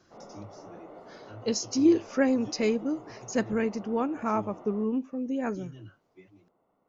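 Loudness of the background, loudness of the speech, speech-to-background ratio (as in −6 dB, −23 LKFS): −48.5 LKFS, −28.5 LKFS, 20.0 dB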